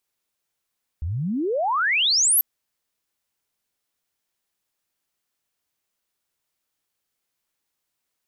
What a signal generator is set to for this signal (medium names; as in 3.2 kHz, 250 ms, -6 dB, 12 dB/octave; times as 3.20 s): sweep logarithmic 72 Hz -> 13 kHz -24 dBFS -> -14.5 dBFS 1.39 s